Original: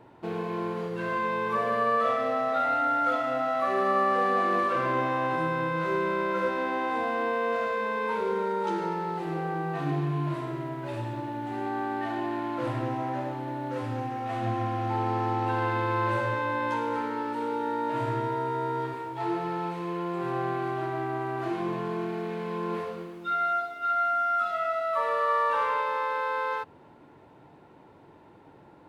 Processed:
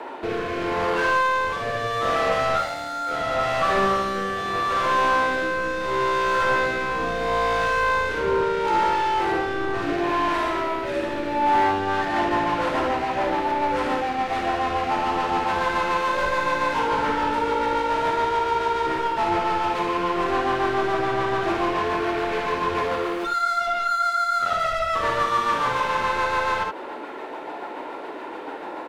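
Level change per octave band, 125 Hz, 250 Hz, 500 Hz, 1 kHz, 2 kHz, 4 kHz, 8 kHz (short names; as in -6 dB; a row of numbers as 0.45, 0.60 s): -3.0 dB, +3.0 dB, +5.0 dB, +6.5 dB, +8.5 dB, +13.0 dB, n/a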